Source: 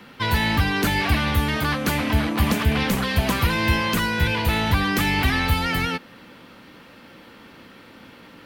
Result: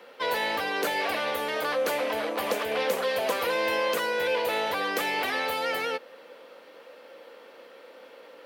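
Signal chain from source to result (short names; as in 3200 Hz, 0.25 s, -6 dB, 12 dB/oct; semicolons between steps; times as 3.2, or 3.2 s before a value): resonant high-pass 510 Hz, resonance Q 4.7; gain -6.5 dB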